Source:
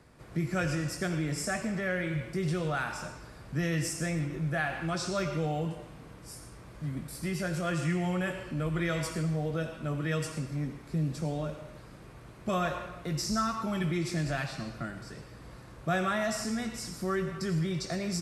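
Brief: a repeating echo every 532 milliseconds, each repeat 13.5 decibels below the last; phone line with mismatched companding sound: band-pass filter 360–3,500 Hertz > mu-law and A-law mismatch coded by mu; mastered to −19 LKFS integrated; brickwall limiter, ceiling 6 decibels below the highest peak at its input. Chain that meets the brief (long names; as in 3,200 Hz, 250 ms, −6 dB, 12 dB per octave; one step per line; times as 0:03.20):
brickwall limiter −24.5 dBFS
band-pass filter 360–3,500 Hz
repeating echo 532 ms, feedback 21%, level −13.5 dB
mu-law and A-law mismatch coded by mu
level +17.5 dB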